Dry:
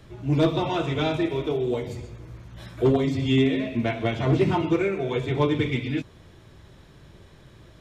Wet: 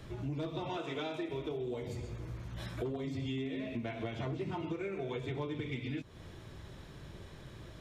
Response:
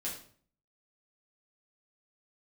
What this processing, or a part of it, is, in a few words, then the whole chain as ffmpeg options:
serial compression, leveller first: -filter_complex "[0:a]asettb=1/sr,asplit=3[s0][s1][s2];[s0]atrim=end=0.774[s3];[s1]atrim=start=0.77:end=1.29,asetpts=PTS-STARTPTS,afade=t=in:d=0.004:c=qsin,afade=t=out:st=0.516:d=0.004:c=qsin,highpass=250[s4];[s2]atrim=start=1.286[s5];[s3][s4]acrossfade=d=0.004:c1=hsin:c2=qsin[s6];[s6][s5]acrossfade=d=0.004:c1=qsin:c2=hsin,acompressor=threshold=0.0631:ratio=2.5,acompressor=threshold=0.0141:ratio=4"

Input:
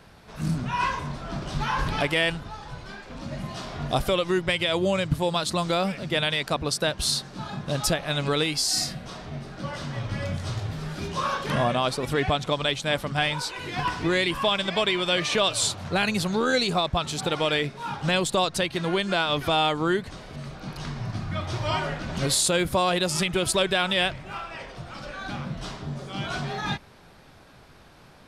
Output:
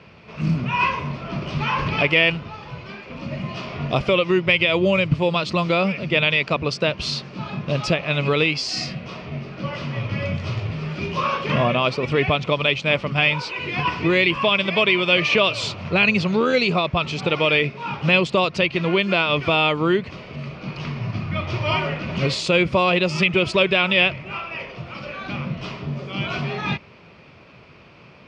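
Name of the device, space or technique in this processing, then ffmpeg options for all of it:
guitar cabinet: -af "highpass=95,equalizer=f=280:t=q:w=4:g=-4,equalizer=f=790:t=q:w=4:g=-8,equalizer=f=1600:t=q:w=4:g=-9,equalizer=f=2500:t=q:w=4:g=8,equalizer=f=3800:t=q:w=4:g=-9,lowpass=f=4500:w=0.5412,lowpass=f=4500:w=1.3066,volume=2.11"

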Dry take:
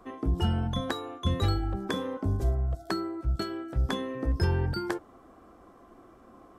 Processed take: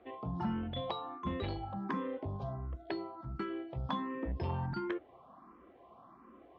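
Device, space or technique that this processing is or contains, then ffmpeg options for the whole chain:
barber-pole phaser into a guitar amplifier: -filter_complex "[0:a]asplit=2[s0][s1];[s1]afreqshift=1.4[s2];[s0][s2]amix=inputs=2:normalize=1,asoftclip=type=tanh:threshold=0.0596,highpass=85,equalizer=f=96:t=q:w=4:g=-9,equalizer=f=300:t=q:w=4:g=-4,equalizer=f=450:t=q:w=4:g=-4,equalizer=f=1000:t=q:w=4:g=5,equalizer=f=1500:t=q:w=4:g=-6,lowpass=f=3500:w=0.5412,lowpass=f=3500:w=1.3066"

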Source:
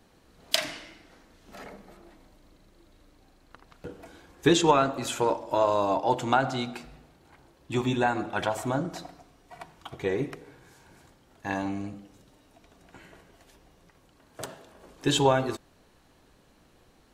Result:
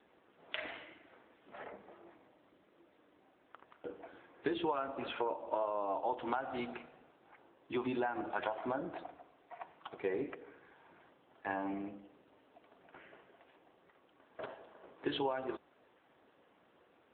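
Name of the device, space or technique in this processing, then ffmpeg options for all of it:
voicemail: -af "highpass=330,lowpass=2900,acompressor=threshold=0.0355:ratio=8,volume=0.794" -ar 8000 -c:a libopencore_amrnb -b:a 7950

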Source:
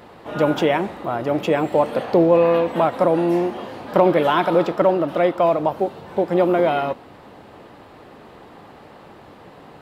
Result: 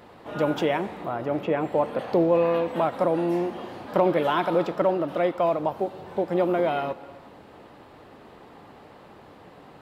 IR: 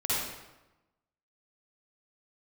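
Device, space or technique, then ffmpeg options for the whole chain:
ducked reverb: -filter_complex "[0:a]asplit=3[s0][s1][s2];[1:a]atrim=start_sample=2205[s3];[s1][s3]afir=irnorm=-1:irlink=0[s4];[s2]apad=whole_len=433019[s5];[s4][s5]sidechaincompress=threshold=0.0398:ratio=8:attack=16:release=228,volume=0.126[s6];[s0][s6]amix=inputs=2:normalize=0,asettb=1/sr,asplit=3[s7][s8][s9];[s7]atrim=end=1.094[s10];[s8]atrim=start=1.09:end=1.99,asetpts=PTS-STARTPTS,afade=t=in:d=0.004:c=qsin,afade=t=out:st=0.896:d=0.004:c=qsin,acrossover=split=2900[s11][s12];[s12]acompressor=threshold=0.00282:ratio=4:attack=1:release=60[s13];[s11][s13]amix=inputs=2:normalize=0[s14];[s9]atrim=start=1.986[s15];[s10][s14]acrossfade=d=0.004:c1=hsin:c2=qsin[s16];[s16][s15]acrossfade=d=0.004:c1=qsin:c2=hsin,volume=0.501"

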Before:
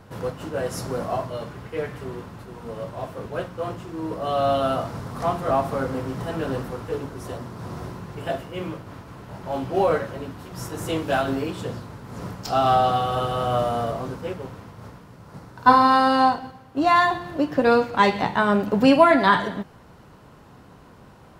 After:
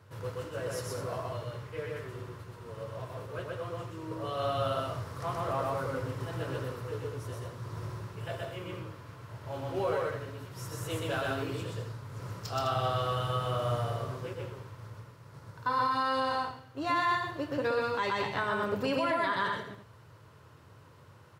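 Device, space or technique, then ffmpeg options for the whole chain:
car stereo with a boomy subwoofer: -af "highpass=240,lowshelf=f=150:t=q:w=3:g=12.5,equalizer=f=750:t=o:w=0.25:g=-11,aecho=1:1:125.4|207:0.891|0.355,alimiter=limit=0.251:level=0:latency=1:release=109,volume=0.376"

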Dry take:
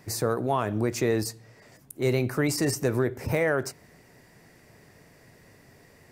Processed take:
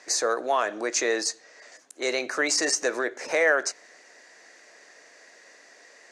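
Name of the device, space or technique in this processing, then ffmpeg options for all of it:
phone speaker on a table: -af "highpass=f=390:w=0.5412,highpass=f=390:w=1.3066,equalizer=f=400:t=q:w=4:g=-7,equalizer=f=900:t=q:w=4:g=-4,equalizer=f=1700:t=q:w=4:g=5,equalizer=f=4100:t=q:w=4:g=4,equalizer=f=6400:t=q:w=4:g=9,lowpass=f=8000:w=0.5412,lowpass=f=8000:w=1.3066,volume=1.68"

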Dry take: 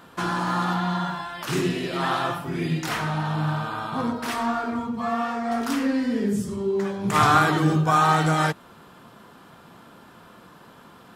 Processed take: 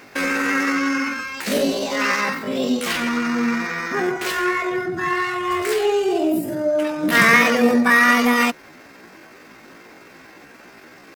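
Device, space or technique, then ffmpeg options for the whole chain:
chipmunk voice: -filter_complex "[0:a]asplit=3[s0][s1][s2];[s0]afade=t=out:st=4.89:d=0.02[s3];[s1]lowshelf=f=130:t=q:w=1.5:g=8,afade=t=in:st=4.89:d=0.02,afade=t=out:st=5.63:d=0.02[s4];[s2]afade=t=in:st=5.63:d=0.02[s5];[s3][s4][s5]amix=inputs=3:normalize=0,asetrate=68011,aresample=44100,atempo=0.64842,volume=1.68"

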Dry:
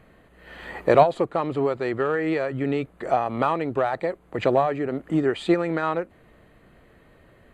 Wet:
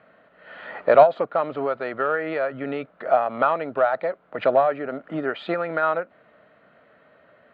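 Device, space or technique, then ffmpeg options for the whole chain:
kitchen radio: -af "highpass=210,equalizer=f=350:t=q:w=4:g=-8,equalizer=f=620:t=q:w=4:g=9,equalizer=f=1400:t=q:w=4:g=10,lowpass=f=4000:w=0.5412,lowpass=f=4000:w=1.3066,volume=0.794"

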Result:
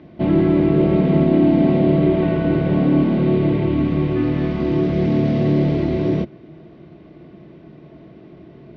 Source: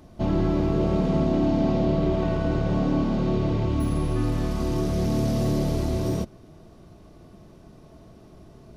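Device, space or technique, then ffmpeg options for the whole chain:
guitar cabinet: -af "highpass=95,equalizer=f=100:t=q:w=4:g=-8,equalizer=f=150:t=q:w=4:g=5,equalizer=f=330:t=q:w=4:g=7,equalizer=f=820:t=q:w=4:g=-4,equalizer=f=1200:t=q:w=4:g=-5,equalizer=f=2100:t=q:w=4:g=6,lowpass=f=3500:w=0.5412,lowpass=f=3500:w=1.3066,volume=1.88"

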